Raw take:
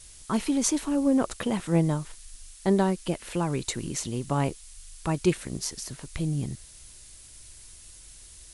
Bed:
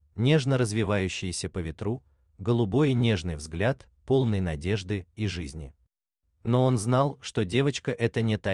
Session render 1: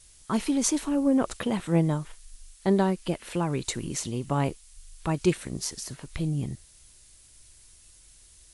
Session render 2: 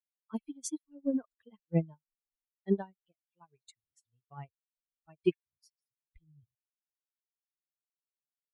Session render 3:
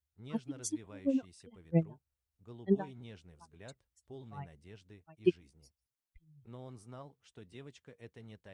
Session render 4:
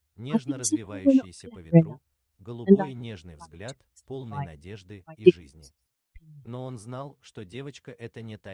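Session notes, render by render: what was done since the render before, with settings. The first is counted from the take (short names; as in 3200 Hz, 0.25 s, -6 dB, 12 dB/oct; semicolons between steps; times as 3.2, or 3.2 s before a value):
noise print and reduce 6 dB
per-bin expansion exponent 3; upward expander 2.5:1, over -48 dBFS
add bed -26 dB
gain +12 dB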